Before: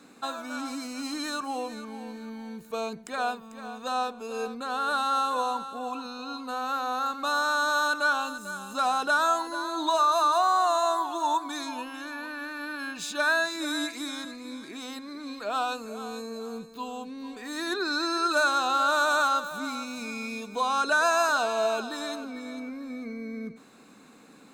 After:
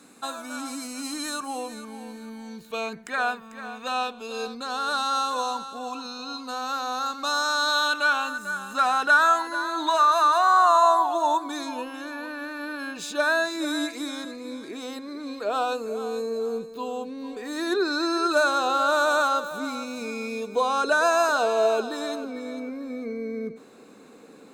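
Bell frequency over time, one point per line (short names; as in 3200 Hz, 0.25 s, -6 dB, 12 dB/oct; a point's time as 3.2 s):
bell +10.5 dB 0.94 oct
2.35 s 10000 Hz
2.9 s 1800 Hz
3.62 s 1800 Hz
4.7 s 5400 Hz
7.49 s 5400 Hz
8.33 s 1800 Hz
10.4 s 1800 Hz
11.42 s 450 Hz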